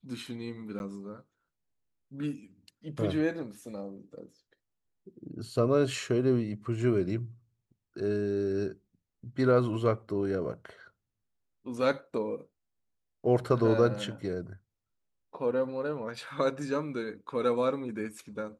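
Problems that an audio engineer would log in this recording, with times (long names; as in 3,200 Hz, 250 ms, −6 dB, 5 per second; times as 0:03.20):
0:00.79–0:00.80: drop-out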